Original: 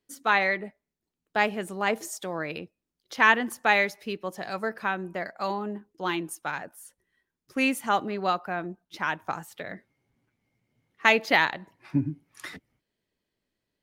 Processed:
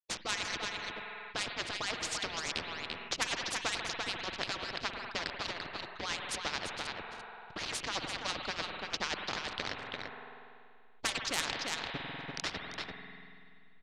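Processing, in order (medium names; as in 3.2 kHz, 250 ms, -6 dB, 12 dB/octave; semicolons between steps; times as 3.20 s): harmonic-percussive separation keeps percussive; in parallel at -3 dB: compression, threshold -39 dBFS, peak gain reduction 21 dB; on the sum: hysteresis with a dead band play -34 dBFS; four-pole ladder low-pass 4.9 kHz, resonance 40%; saturation -16 dBFS, distortion -21 dB; tremolo 9.3 Hz, depth 61%; on a send: delay 341 ms -12 dB; on the sum: spring tank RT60 2.2 s, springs 48 ms, chirp 65 ms, DRR 15 dB; spectrum-flattening compressor 4:1; trim +3 dB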